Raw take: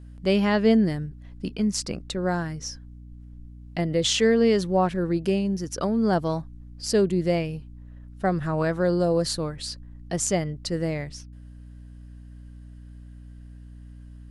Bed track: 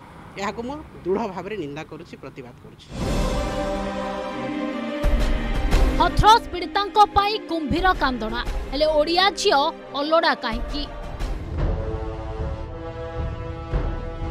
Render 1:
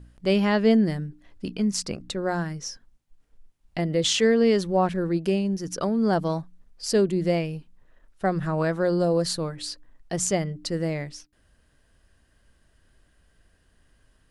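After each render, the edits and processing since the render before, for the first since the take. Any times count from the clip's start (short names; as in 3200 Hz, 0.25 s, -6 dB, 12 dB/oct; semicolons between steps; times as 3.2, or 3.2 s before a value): de-hum 60 Hz, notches 5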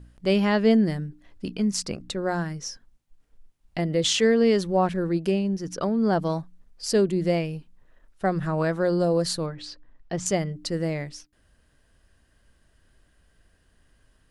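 5.31–6.22 high shelf 7900 Hz -10.5 dB; 9.46–10.26 air absorption 130 m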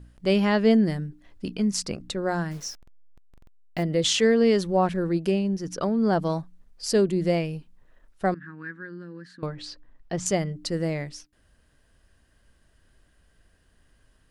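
2.51–3.83 level-crossing sampler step -44 dBFS; 8.34–9.43 double band-pass 650 Hz, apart 2.7 oct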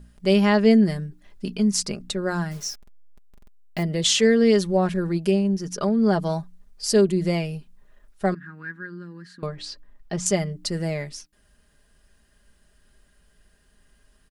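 high shelf 5500 Hz +6 dB; comb 4.9 ms, depth 53%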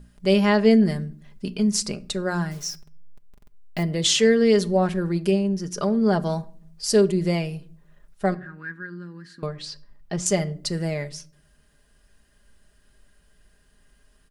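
shoebox room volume 710 m³, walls furnished, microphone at 0.35 m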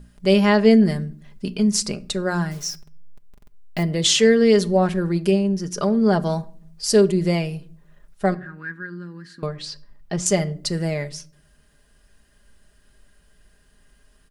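gain +2.5 dB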